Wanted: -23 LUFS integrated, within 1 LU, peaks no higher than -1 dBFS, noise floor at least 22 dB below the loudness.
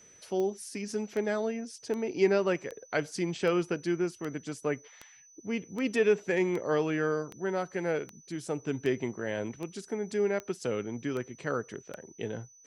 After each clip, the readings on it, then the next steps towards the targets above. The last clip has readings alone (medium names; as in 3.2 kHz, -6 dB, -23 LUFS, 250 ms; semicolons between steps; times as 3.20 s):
clicks found 16; steady tone 6 kHz; tone level -55 dBFS; loudness -32.0 LUFS; peak level -13.0 dBFS; loudness target -23.0 LUFS
-> de-click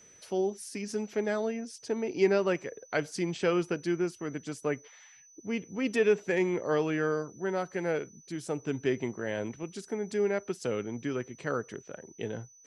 clicks found 0; steady tone 6 kHz; tone level -55 dBFS
-> band-stop 6 kHz, Q 30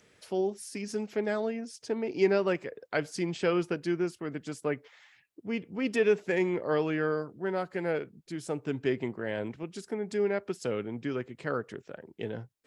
steady tone not found; loudness -32.0 LUFS; peak level -13.0 dBFS; loudness target -23.0 LUFS
-> trim +9 dB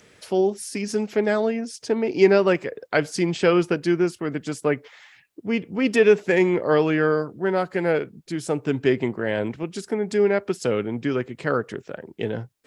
loudness -23.0 LUFS; peak level -4.0 dBFS; noise floor -58 dBFS